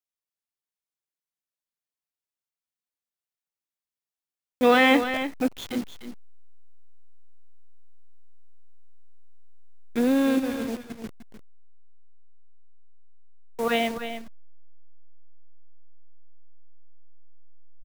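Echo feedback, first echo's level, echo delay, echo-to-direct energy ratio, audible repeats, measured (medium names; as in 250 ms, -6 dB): no regular repeats, -10.0 dB, 301 ms, -10.0 dB, 1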